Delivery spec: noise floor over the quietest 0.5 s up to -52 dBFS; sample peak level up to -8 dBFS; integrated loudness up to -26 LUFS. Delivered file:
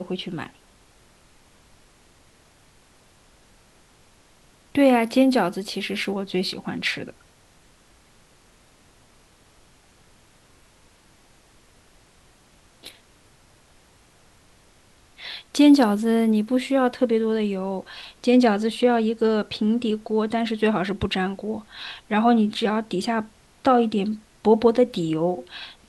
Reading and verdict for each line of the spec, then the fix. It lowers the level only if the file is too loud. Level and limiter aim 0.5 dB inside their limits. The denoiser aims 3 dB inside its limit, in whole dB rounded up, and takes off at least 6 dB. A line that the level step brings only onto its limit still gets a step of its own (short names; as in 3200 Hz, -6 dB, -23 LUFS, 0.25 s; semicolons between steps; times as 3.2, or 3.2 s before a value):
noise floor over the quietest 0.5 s -56 dBFS: OK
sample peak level -5.5 dBFS: fail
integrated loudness -22.0 LUFS: fail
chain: gain -4.5 dB